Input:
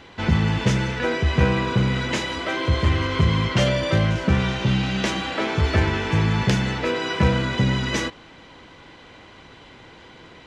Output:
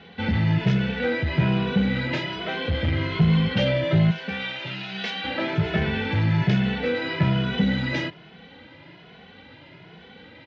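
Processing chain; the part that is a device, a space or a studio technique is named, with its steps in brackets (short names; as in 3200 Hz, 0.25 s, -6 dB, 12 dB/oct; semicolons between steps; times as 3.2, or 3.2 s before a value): 4.1–5.24 HPF 1200 Hz 6 dB/oct; barber-pole flanger into a guitar amplifier (endless flanger 2.3 ms +1.2 Hz; soft clip -17 dBFS, distortion -16 dB; speaker cabinet 88–4100 Hz, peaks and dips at 170 Hz +8 dB, 360 Hz -3 dB, 1100 Hz -10 dB); gain +2.5 dB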